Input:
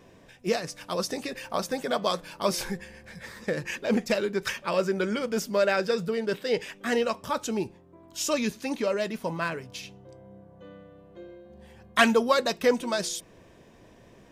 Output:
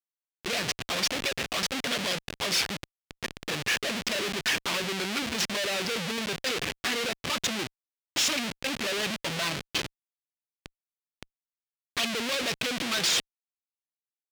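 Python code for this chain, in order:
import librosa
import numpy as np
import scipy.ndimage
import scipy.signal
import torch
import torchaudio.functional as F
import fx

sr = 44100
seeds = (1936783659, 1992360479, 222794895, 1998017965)

y = fx.env_flanger(x, sr, rest_ms=5.0, full_db=-20.5)
y = fx.schmitt(y, sr, flips_db=-38.0)
y = fx.weighting(y, sr, curve='D')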